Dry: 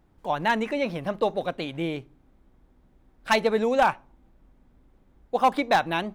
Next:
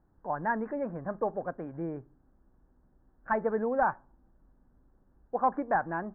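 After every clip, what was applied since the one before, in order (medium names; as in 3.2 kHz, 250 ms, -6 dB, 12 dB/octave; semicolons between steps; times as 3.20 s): Chebyshev low-pass 1.7 kHz, order 5; trim -5.5 dB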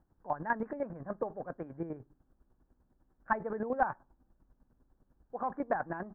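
square tremolo 10 Hz, depth 65%, duty 30%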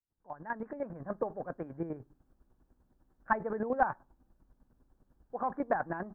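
fade-in on the opening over 1.14 s; trim +1.5 dB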